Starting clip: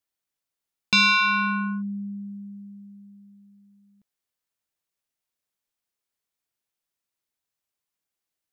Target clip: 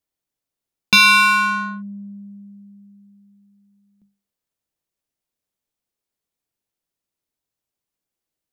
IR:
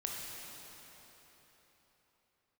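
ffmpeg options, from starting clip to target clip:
-filter_complex "[0:a]bandreject=f=50:t=h:w=6,bandreject=f=100:t=h:w=6,bandreject=f=150:t=h:w=6,bandreject=f=200:t=h:w=6,asplit=2[a][b];[b]adynamicsmooth=sensitivity=5:basefreq=870,volume=2.5dB[c];[a][c]amix=inputs=2:normalize=0"

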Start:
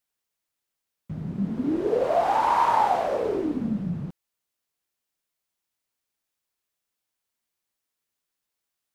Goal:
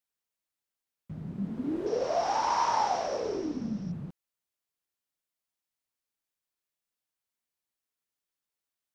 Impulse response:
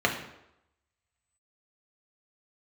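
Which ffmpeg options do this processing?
-filter_complex "[0:a]asettb=1/sr,asplit=3[a][b][c];[a]atrim=end=1.864[d];[b]atrim=start=1.86:end=3.92,asetpts=PTS-STARTPTS,afade=t=in:d=0.004:c=qsin,afade=t=out:st=2.056:d=0.004:c=qsin,lowpass=f=5.6k:t=q:w=12[e];[c]atrim=start=3.916[f];[d][e]acrossfade=d=0.004:c1=hsin:c2=qsin[g];[g][f]acrossfade=d=0.004:c1=qsin:c2=hsin,volume=-6.5dB"

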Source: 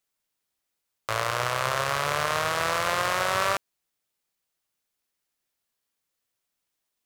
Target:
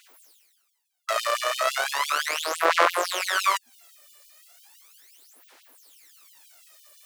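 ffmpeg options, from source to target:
-af "bandreject=f=60:t=h:w=6,bandreject=f=120:t=h:w=6,bandreject=f=180:t=h:w=6,bandreject=f=240:t=h:w=6,areverse,acompressor=mode=upward:threshold=-36dB:ratio=2.5,areverse,aphaser=in_gain=1:out_gain=1:delay=1.7:decay=0.78:speed=0.36:type=sinusoidal,afftfilt=real='re*gte(b*sr/1024,220*pow(2800/220,0.5+0.5*sin(2*PI*5.9*pts/sr)))':imag='im*gte(b*sr/1024,220*pow(2800/220,0.5+0.5*sin(2*PI*5.9*pts/sr)))':win_size=1024:overlap=0.75,volume=-1dB"

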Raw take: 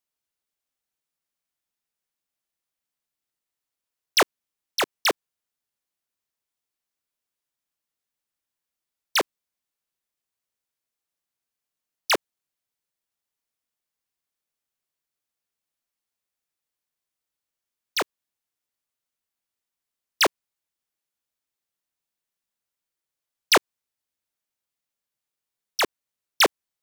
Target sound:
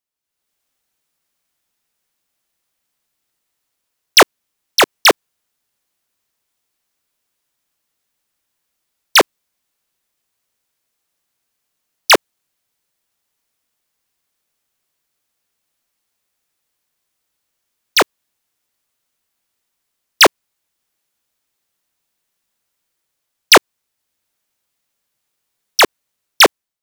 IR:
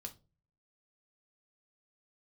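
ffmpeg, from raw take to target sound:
-af "dynaudnorm=f=110:g=7:m=13dB"

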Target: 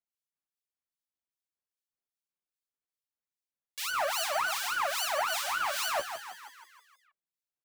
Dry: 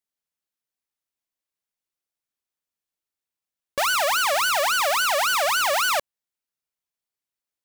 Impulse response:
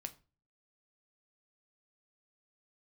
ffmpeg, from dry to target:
-filter_complex "[0:a]acrossover=split=2300[a][b];[a]aeval=exprs='val(0)*(1-1/2+1/2*cos(2*PI*2.5*n/s))':c=same[c];[b]aeval=exprs='val(0)*(1-1/2-1/2*cos(2*PI*2.5*n/s))':c=same[d];[c][d]amix=inputs=2:normalize=0,asplit=8[e][f][g][h][i][j][k][l];[f]adelay=159,afreqshift=82,volume=-9dB[m];[g]adelay=318,afreqshift=164,volume=-13.9dB[n];[h]adelay=477,afreqshift=246,volume=-18.8dB[o];[i]adelay=636,afreqshift=328,volume=-23.6dB[p];[j]adelay=795,afreqshift=410,volume=-28.5dB[q];[k]adelay=954,afreqshift=492,volume=-33.4dB[r];[l]adelay=1113,afreqshift=574,volume=-38.3dB[s];[e][m][n][o][p][q][r][s]amix=inputs=8:normalize=0,flanger=delay=5.6:depth=8.5:regen=-21:speed=0.42:shape=sinusoidal,volume=-2dB"

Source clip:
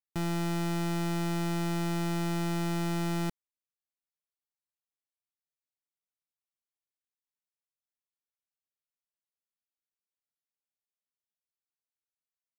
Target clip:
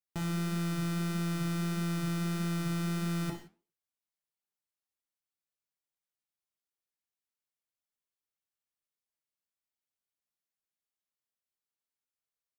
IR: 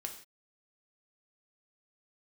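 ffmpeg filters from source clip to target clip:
-filter_complex "[0:a]asplit=2[a][b];[b]adelay=240,highpass=300,lowpass=3.4k,asoftclip=type=hard:threshold=-39.5dB,volume=-30dB[c];[a][c]amix=inputs=2:normalize=0[d];[1:a]atrim=start_sample=2205[e];[d][e]afir=irnorm=-1:irlink=0,flanger=delay=5:depth=9.4:regen=-77:speed=1.6:shape=triangular,volume=5dB"

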